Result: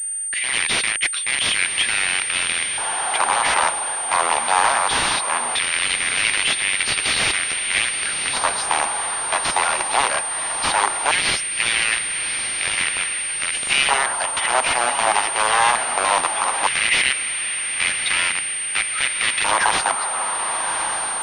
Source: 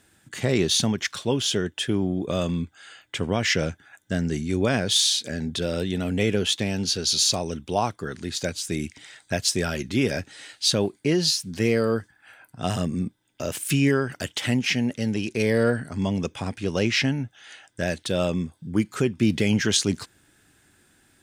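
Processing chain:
0:17.92–0:18.98: expanding power law on the bin magnitudes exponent 2
in parallel at +3 dB: brickwall limiter −18 dBFS, peak gain reduction 9.5 dB
on the sum: wrap-around overflow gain 12.5 dB
feedback delay with all-pass diffusion 1,189 ms, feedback 50%, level −6.5 dB
auto-filter high-pass square 0.18 Hz 880–2,200 Hz
switching amplifier with a slow clock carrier 8,800 Hz

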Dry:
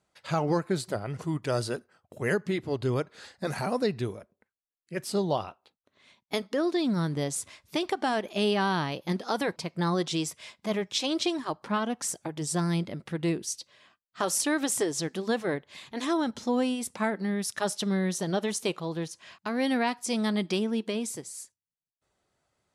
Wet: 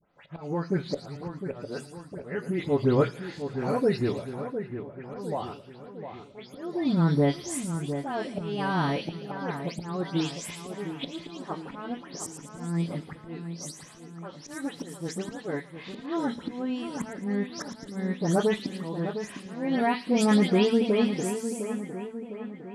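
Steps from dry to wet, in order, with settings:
every frequency bin delayed by itself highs late, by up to 181 ms
high-shelf EQ 2,900 Hz −10 dB
volume swells 712 ms
echo with a time of its own for lows and highs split 2,400 Hz, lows 706 ms, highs 112 ms, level −9 dB
on a send at −10.5 dB: convolution reverb RT60 0.25 s, pre-delay 7 ms
on the sum: level +7.5 dB

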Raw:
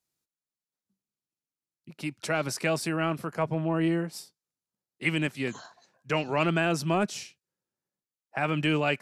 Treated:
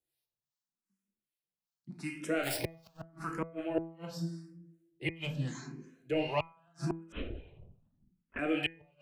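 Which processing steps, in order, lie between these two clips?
0:02.43–0:02.97: each half-wave held at its own peak
0:05.14–0:06.19: parametric band 1,100 Hz −5.5 dB 2 octaves
rectangular room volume 330 cubic metres, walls mixed, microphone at 0.74 metres
harmonic and percussive parts rebalanced harmonic +4 dB
0:07.12–0:08.39: linear-prediction vocoder at 8 kHz whisper
two-band tremolo in antiphase 2.6 Hz, depth 70%, crossover 750 Hz
gate with flip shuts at −15 dBFS, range −41 dB
notch filter 2,300 Hz, Q 30
hum removal 164.4 Hz, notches 15
frequency shifter mixed with the dry sound +0.82 Hz
level −1 dB

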